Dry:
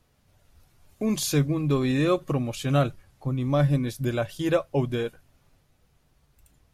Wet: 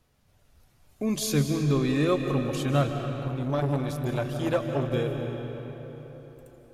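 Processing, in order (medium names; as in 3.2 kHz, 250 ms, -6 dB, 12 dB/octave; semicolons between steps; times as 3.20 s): reverberation RT60 4.1 s, pre-delay 115 ms, DRR 4.5 dB; 3.28–4.93 s: transformer saturation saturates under 520 Hz; trim -2 dB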